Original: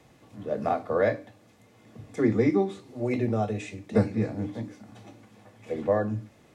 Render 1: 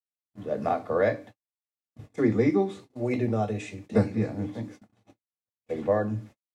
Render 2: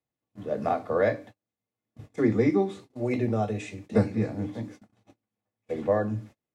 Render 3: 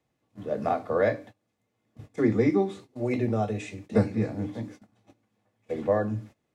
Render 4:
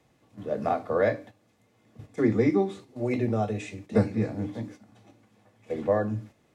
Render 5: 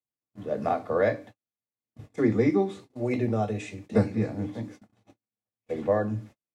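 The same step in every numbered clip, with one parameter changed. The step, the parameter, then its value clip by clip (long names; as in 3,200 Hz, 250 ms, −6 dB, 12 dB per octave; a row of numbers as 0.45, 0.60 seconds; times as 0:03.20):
noise gate, range: −60, −34, −20, −8, −46 decibels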